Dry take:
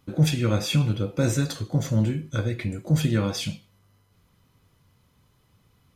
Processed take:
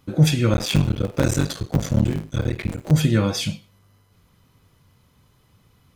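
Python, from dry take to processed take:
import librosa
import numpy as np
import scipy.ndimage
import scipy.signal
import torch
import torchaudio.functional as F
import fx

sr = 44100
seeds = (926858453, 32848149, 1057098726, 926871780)

y = fx.cycle_switch(x, sr, every=3, mode='muted', at=(0.53, 2.91))
y = y * librosa.db_to_amplitude(4.5)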